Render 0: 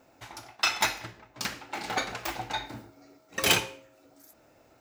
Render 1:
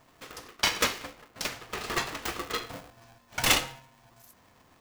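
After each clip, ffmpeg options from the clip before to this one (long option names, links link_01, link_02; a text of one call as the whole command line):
ffmpeg -i in.wav -af "aeval=exprs='val(0)*sgn(sin(2*PI*400*n/s))':channel_layout=same" out.wav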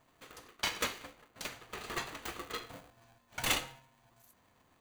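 ffmpeg -i in.wav -af "bandreject=frequency=5300:width=7.4,volume=-8dB" out.wav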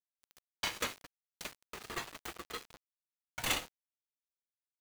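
ffmpeg -i in.wav -af "aeval=exprs='val(0)*gte(abs(val(0)),0.00841)':channel_layout=same,volume=-2dB" out.wav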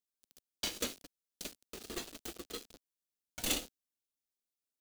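ffmpeg -i in.wav -af "equalizer=frequency=125:width_type=o:width=1:gain=-10,equalizer=frequency=250:width_type=o:width=1:gain=5,equalizer=frequency=1000:width_type=o:width=1:gain=-12,equalizer=frequency=2000:width_type=o:width=1:gain=-9,volume=3dB" out.wav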